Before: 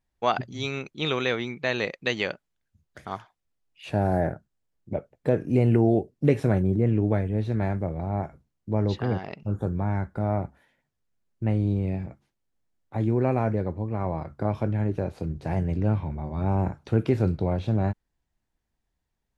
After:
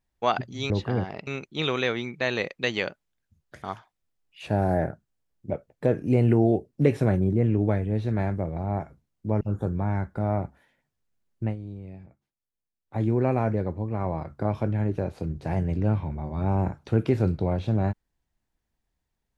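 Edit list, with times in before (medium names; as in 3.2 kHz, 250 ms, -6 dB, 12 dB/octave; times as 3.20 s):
8.84–9.41 s: move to 0.70 s
11.44–12.97 s: dip -13.5 dB, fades 0.12 s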